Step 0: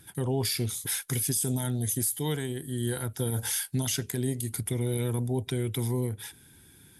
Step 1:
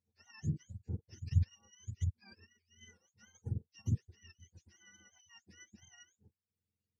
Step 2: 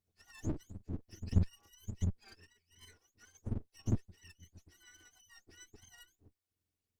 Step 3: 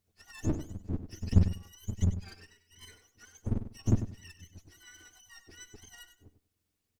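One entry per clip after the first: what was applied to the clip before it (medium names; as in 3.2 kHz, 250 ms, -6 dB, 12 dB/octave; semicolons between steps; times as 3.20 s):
spectrum inverted on a logarithmic axis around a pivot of 850 Hz; reverb removal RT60 0.55 s; upward expansion 2.5:1, over -39 dBFS; trim -4.5 dB
comb filter that takes the minimum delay 2.7 ms; trim +2.5 dB
feedback delay 97 ms, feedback 21%, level -11 dB; trim +6.5 dB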